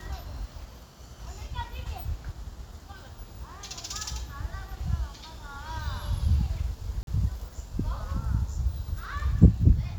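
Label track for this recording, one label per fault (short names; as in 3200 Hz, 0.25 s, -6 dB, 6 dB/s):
7.030000	7.070000	gap 42 ms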